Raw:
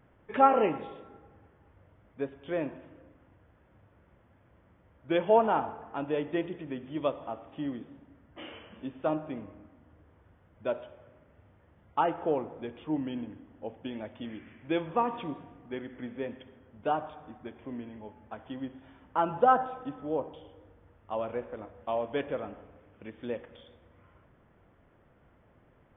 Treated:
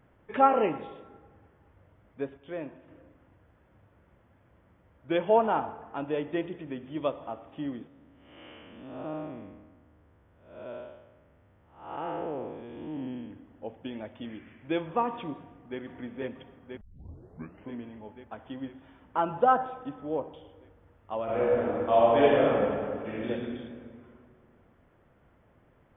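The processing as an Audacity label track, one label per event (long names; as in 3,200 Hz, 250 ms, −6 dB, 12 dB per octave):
2.370000	2.880000	clip gain −5 dB
7.870000	13.310000	spectrum smeared in time width 267 ms
15.370000	15.790000	delay throw 490 ms, feedback 75%, level −2.5 dB
16.810000	16.810000	tape start 0.90 s
21.240000	23.270000	thrown reverb, RT60 2.1 s, DRR −11 dB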